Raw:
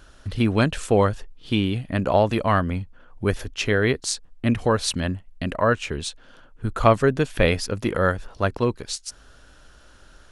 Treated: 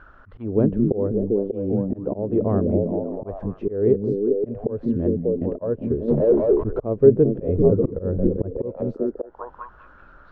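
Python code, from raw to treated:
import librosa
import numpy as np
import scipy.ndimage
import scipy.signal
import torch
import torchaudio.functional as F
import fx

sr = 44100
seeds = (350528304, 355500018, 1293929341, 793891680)

p1 = fx.sample_sort(x, sr, block=8, at=(1.58, 2.03))
p2 = p1 + fx.echo_stepped(p1, sr, ms=196, hz=170.0, octaves=0.7, feedback_pct=70, wet_db=-0.5, dry=0)
p3 = fx.auto_swell(p2, sr, attack_ms=256.0)
p4 = fx.leveller(p3, sr, passes=5, at=(6.08, 6.8))
p5 = fx.low_shelf(p4, sr, hz=160.0, db=12.0, at=(7.48, 8.59))
p6 = fx.envelope_lowpass(p5, sr, base_hz=430.0, top_hz=1500.0, q=3.0, full_db=-25.0, direction='down')
y = p6 * 10.0 ** (-1.0 / 20.0)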